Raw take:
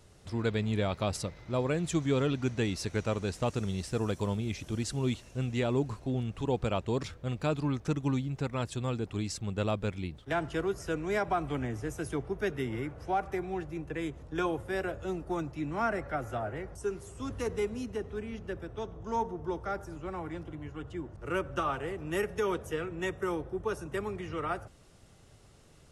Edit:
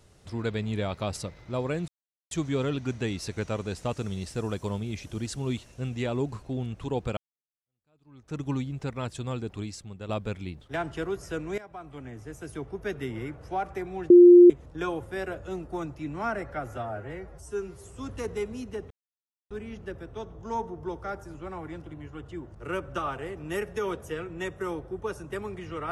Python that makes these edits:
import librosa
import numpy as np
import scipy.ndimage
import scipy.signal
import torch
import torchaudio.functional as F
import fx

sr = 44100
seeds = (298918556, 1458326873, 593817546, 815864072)

y = fx.edit(x, sr, fx.insert_silence(at_s=1.88, length_s=0.43),
    fx.fade_in_span(start_s=6.74, length_s=1.23, curve='exp'),
    fx.fade_out_to(start_s=9.12, length_s=0.54, curve='qua', floor_db=-8.5),
    fx.fade_in_from(start_s=11.15, length_s=1.44, floor_db=-18.0),
    fx.bleep(start_s=13.67, length_s=0.4, hz=352.0, db=-8.5),
    fx.stretch_span(start_s=16.34, length_s=0.71, factor=1.5),
    fx.insert_silence(at_s=18.12, length_s=0.6), tone=tone)